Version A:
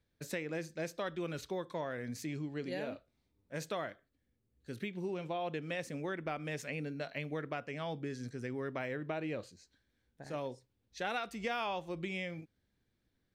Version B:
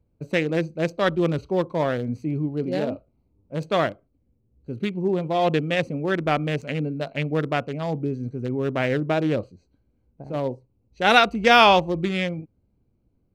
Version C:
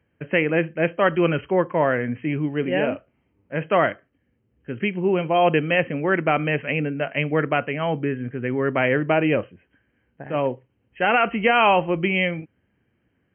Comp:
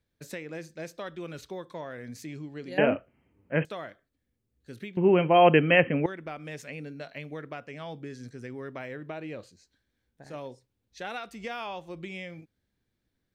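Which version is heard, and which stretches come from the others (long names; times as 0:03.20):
A
0:02.78–0:03.65: punch in from C
0:04.97–0:06.06: punch in from C
not used: B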